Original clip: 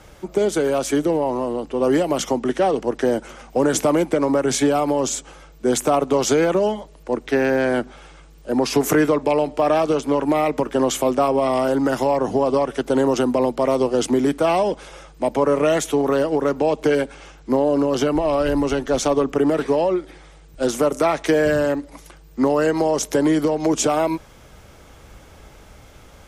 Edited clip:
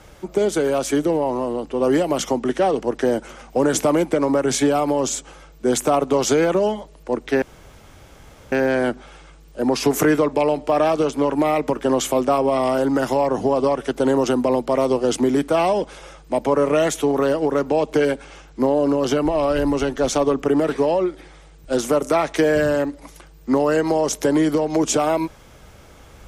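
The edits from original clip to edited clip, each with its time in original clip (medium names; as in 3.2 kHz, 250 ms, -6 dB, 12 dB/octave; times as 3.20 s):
7.42 s: insert room tone 1.10 s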